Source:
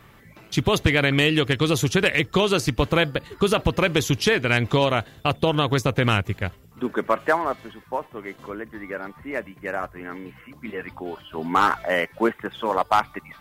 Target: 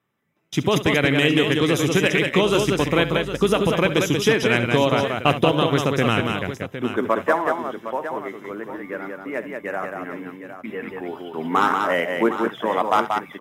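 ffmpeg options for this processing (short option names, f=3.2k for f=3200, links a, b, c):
-filter_complex "[0:a]agate=range=-24dB:threshold=-42dB:ratio=16:detection=peak,highpass=180,lowshelf=f=430:g=5,asettb=1/sr,asplit=3[a][b][c];[a]atrim=end=2.444[d];[b]atrim=start=2.44:end=3.56,asetpts=PTS-STARTPTS,afade=t=in:d=0.004:c=qsin,afade=t=out:st=1.116:d=0.004:c=qsin,aeval=exprs='val(0)+0.0112*(sin(2*PI*50*n/s)+sin(2*PI*2*50*n/s)/2+sin(2*PI*3*50*n/s)/3+sin(2*PI*4*50*n/s)/4+sin(2*PI*5*50*n/s)/5)':c=same[e];[c]atrim=start=3.556[f];[d][e]acrossfade=d=0.004:c1=hsin:c2=qsin[g];[g][f]acrossfade=d=0.004:c1=qsin:c2=hsin,asplit=3[h][i][j];[h]afade=t=out:st=4.98:d=0.02[k];[i]acontrast=25,afade=t=in:st=4.98:d=0.02,afade=t=out:st=5.43:d=0.02[l];[j]afade=t=in:st=5.43:d=0.02[m];[k][l][m]amix=inputs=3:normalize=0,asuperstop=centerf=4400:order=4:qfactor=6.1,aecho=1:1:68|185|760:0.211|0.596|0.282,volume=-1dB"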